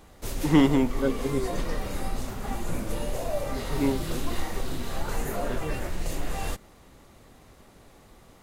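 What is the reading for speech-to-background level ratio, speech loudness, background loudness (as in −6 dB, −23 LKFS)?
7.5 dB, −26.0 LKFS, −33.5 LKFS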